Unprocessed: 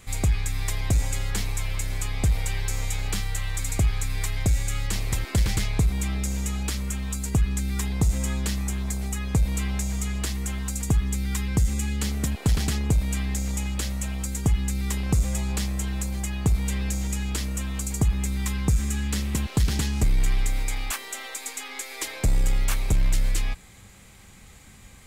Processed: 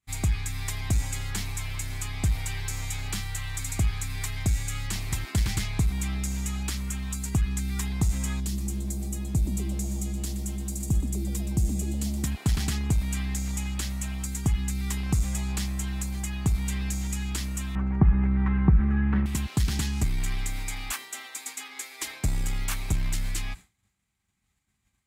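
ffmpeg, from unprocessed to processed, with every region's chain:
-filter_complex "[0:a]asettb=1/sr,asplit=3[a][b][c];[a]atrim=end=8.404[d];[b]atrim=start=8.4:end=12.24,asetpts=PTS-STARTPTS,afade=t=in:d=0.004:c=qsin,afade=t=out:st=3.836:d=0.004:c=qsin,equalizer=f=1.6k:t=o:w=2.4:g=-13.5,asplit=6[e][f][g][h][i][j];[f]adelay=122,afreqshift=140,volume=-11dB[k];[g]adelay=244,afreqshift=280,volume=-16.8dB[l];[h]adelay=366,afreqshift=420,volume=-22.7dB[m];[i]adelay=488,afreqshift=560,volume=-28.5dB[n];[j]adelay=610,afreqshift=700,volume=-34.4dB[o];[e][k][l][m][n][o]amix=inputs=6:normalize=0,atrim=end_sample=169344[p];[c]atrim=start=12.236[q];[d][p]acrossfade=d=0.004:c1=hsin:c2=qsin[r];[r][q]acrossfade=d=0.004:c1=qsin:c2=hsin,asettb=1/sr,asplit=3[s][t][u];[s]atrim=end=17.754[v];[t]atrim=start=17.75:end=19.26,asetpts=PTS-STARTPTS,afade=t=in:d=0.004:c=qsin,afade=t=out:st=1.506:d=0.004:c=qsin,lowpass=f=1.7k:w=0.5412,lowpass=f=1.7k:w=1.3066,acontrast=68,aecho=1:1:5.3:0.34,atrim=end_sample=66591[w];[u]atrim=start=19.256[x];[v][w]acrossfade=d=0.004:c1=hsin:c2=qsin[y];[y][x]acrossfade=d=0.004:c1=qsin:c2=hsin,highpass=41,equalizer=f=500:t=o:w=0.5:g=-11,agate=range=-33dB:threshold=-34dB:ratio=3:detection=peak,volume=-2dB"

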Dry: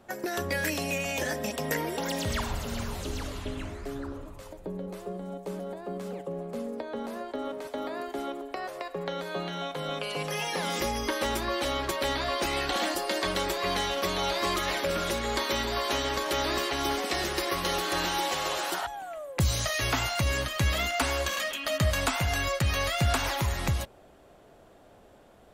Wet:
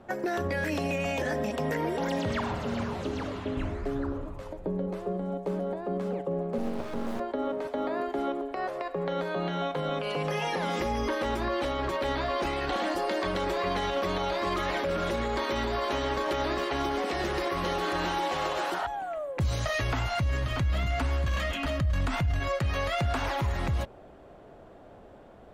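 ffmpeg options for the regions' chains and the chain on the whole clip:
-filter_complex "[0:a]asettb=1/sr,asplit=3[a][b][c];[a]atrim=end=2.184[d];[b]atrim=start=2.18:end=3.57,asetpts=PTS-STARTPTS,afade=t=in:d=0.004:c=qsin,afade=t=out:st=1.386:d=0.004:c=qsin,highpass=120,highshelf=f=9.6k:g=-10.5[e];[c]atrim=start=3.566[f];[d][e]acrossfade=d=0.004:c1=hsin:c2=qsin[g];[g][f]acrossfade=d=0.004:c1=qsin:c2=hsin,asettb=1/sr,asplit=3[h][i][j];[h]atrim=end=6.584[k];[i]atrim=start=6.58:end=7.2,asetpts=PTS-STARTPTS,afade=t=in:d=0.004:c=qsin,afade=t=out:st=0.616:d=0.004:c=qsin,bass=f=250:g=11,treble=f=4k:g=6,acrusher=bits=4:dc=4:mix=0:aa=0.000001[l];[j]atrim=start=7.196[m];[k][l]acrossfade=d=0.004:c1=hsin:c2=qsin[n];[n][m]acrossfade=d=0.004:c1=qsin:c2=hsin,asettb=1/sr,asplit=3[o][p][q];[o]atrim=end=19.574[r];[p]atrim=start=19.57:end=22.4,asetpts=PTS-STARTPTS,afade=t=in:d=0.004:c=qsin,afade=t=out:st=2.826:d=0.004:c=qsin,aecho=1:1:635:0.266,atrim=end_sample=124803,asubboost=boost=6.5:cutoff=220[s];[q]atrim=start=22.396[t];[r][s]acrossfade=d=0.004:c1=hsin:c2=qsin[u];[u][t]acrossfade=d=0.004:c1=qsin:c2=hsin,lowpass=f=1.5k:p=1,alimiter=level_in=2.5dB:limit=-24dB:level=0:latency=1:release=56,volume=-2.5dB,volume=5.5dB"

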